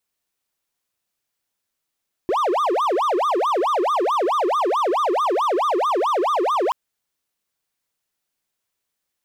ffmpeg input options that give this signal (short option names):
-f lavfi -i "aevalsrc='0.178*(1-4*abs(mod((787*t-443/(2*PI*4.6)*sin(2*PI*4.6*t))+0.25,1)-0.5))':d=4.43:s=44100"